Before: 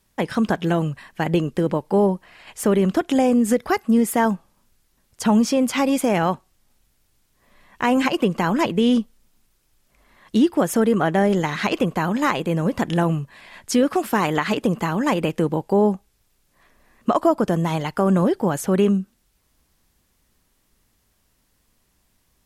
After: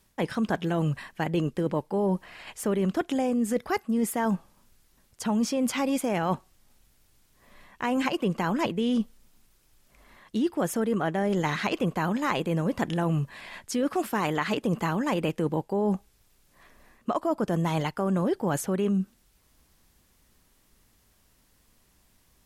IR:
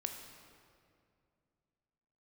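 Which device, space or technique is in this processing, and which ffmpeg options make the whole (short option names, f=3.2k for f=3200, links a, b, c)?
compression on the reversed sound: -af "areverse,acompressor=threshold=-25dB:ratio=6,areverse,volume=1.5dB"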